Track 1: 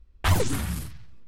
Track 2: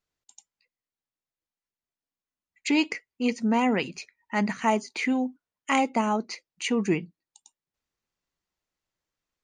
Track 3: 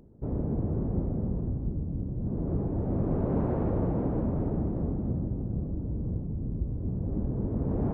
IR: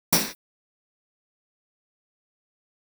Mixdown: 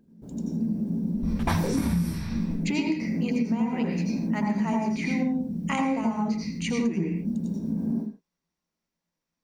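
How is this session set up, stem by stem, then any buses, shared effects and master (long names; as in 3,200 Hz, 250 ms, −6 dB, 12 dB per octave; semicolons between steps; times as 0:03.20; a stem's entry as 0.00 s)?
−3.0 dB, 1.15 s, bus A, send −7.5 dB, pitch vibrato 5 Hz 7.6 cents; envelope flattener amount 70%
−3.5 dB, 0.00 s, no bus, send −16 dB, no processing
−8.0 dB, 0.00 s, bus A, send −22 dB, low-shelf EQ 300 Hz −7.5 dB; hollow resonant body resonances 210/1,600 Hz, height 16 dB; noise that follows the level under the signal 30 dB
bus A: 0.0 dB, sample-and-hold tremolo; downward compressor 6 to 1, threshold −40 dBFS, peak gain reduction 18.5 dB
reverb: on, pre-delay 76 ms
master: downward compressor 12 to 1, threshold −22 dBFS, peak gain reduction 21 dB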